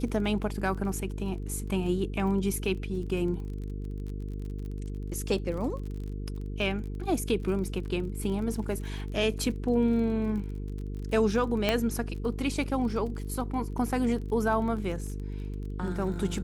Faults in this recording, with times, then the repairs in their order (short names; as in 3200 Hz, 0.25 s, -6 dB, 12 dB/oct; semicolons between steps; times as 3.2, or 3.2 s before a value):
buzz 50 Hz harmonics 9 -35 dBFS
crackle 31/s -37 dBFS
11.69 pop -11 dBFS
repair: de-click; de-hum 50 Hz, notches 9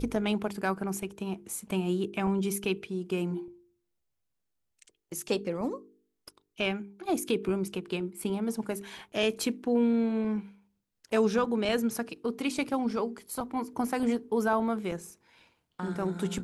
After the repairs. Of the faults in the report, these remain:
none